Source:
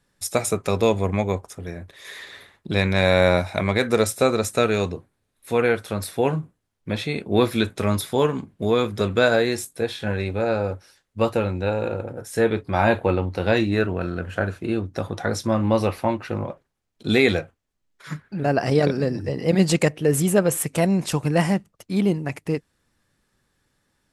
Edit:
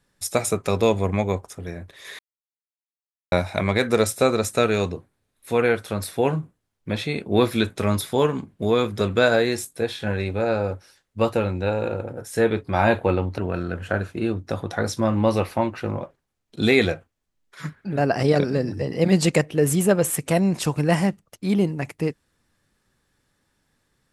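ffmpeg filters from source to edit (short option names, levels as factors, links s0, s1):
-filter_complex "[0:a]asplit=4[s0][s1][s2][s3];[s0]atrim=end=2.19,asetpts=PTS-STARTPTS,afade=t=out:st=2.186:d=0.004:c=hsin[s4];[s1]atrim=start=2.19:end=3.32,asetpts=PTS-STARTPTS,volume=0[s5];[s2]atrim=start=3.32:end=13.382,asetpts=PTS-STARTPTS,afade=t=in:d=0.004:c=hsin[s6];[s3]atrim=start=13.848[s7];[s4][s5][s6]concat=n=3:v=0:a=1[s8];[s8][s7]acrossfade=d=0.004:c1=hsin:c2=hsin"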